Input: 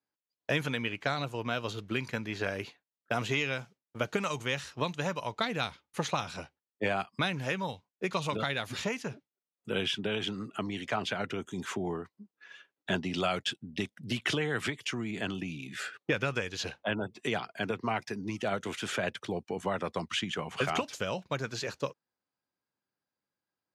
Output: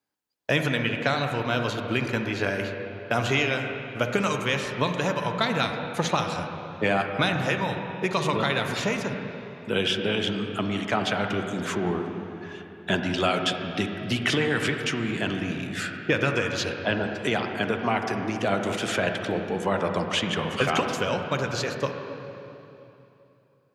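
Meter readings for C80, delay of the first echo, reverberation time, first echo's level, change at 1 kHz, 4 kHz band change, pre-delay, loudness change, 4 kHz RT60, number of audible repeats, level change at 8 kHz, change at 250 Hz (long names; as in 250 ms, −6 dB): 5.5 dB, no echo audible, 3.0 s, no echo audible, +7.5 dB, +6.5 dB, 38 ms, +7.5 dB, 2.6 s, no echo audible, +6.0 dB, +8.0 dB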